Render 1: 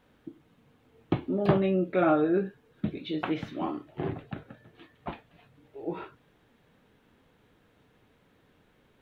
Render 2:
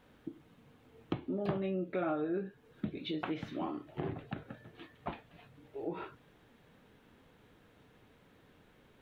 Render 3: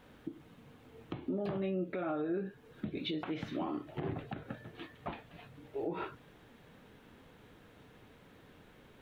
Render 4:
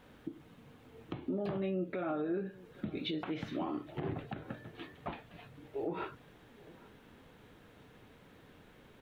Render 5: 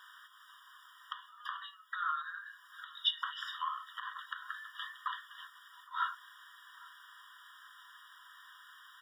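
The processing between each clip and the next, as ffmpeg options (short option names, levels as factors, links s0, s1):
-af "acompressor=threshold=0.0126:ratio=2.5,volume=1.12"
-af "alimiter=level_in=2.51:limit=0.0631:level=0:latency=1:release=143,volume=0.398,volume=1.68"
-filter_complex "[0:a]asplit=2[s0][s1];[s1]adelay=816.3,volume=0.0891,highshelf=f=4000:g=-18.4[s2];[s0][s2]amix=inputs=2:normalize=0"
-af "afftfilt=real='re*eq(mod(floor(b*sr/1024/960),2),1)':imag='im*eq(mod(floor(b*sr/1024/960),2),1)':win_size=1024:overlap=0.75,volume=3.55"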